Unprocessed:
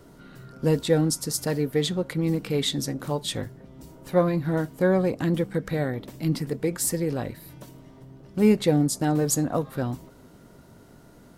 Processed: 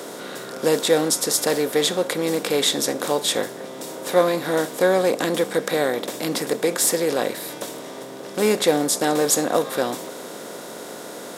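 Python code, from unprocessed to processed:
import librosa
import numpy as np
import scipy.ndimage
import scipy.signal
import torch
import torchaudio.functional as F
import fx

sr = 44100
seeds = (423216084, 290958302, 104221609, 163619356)

y = fx.bin_compress(x, sr, power=0.6)
y = scipy.signal.sosfilt(scipy.signal.butter(2, 410.0, 'highpass', fs=sr, output='sos'), y)
y = y * 10.0 ** (4.5 / 20.0)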